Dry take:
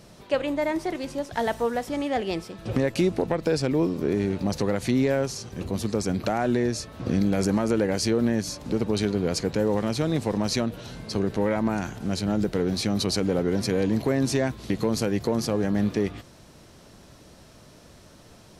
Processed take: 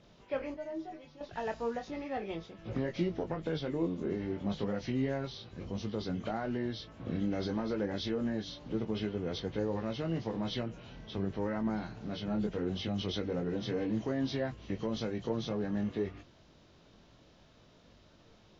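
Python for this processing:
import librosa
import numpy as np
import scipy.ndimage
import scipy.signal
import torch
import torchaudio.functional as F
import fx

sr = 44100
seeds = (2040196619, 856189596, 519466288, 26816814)

y = fx.freq_compress(x, sr, knee_hz=1700.0, ratio=1.5)
y = fx.stiff_resonator(y, sr, f0_hz=75.0, decay_s=0.24, stiffness=0.008, at=(0.54, 1.21))
y = fx.chorus_voices(y, sr, voices=4, hz=0.3, base_ms=21, depth_ms=3.4, mix_pct=35)
y = F.gain(torch.from_numpy(y), -7.5).numpy()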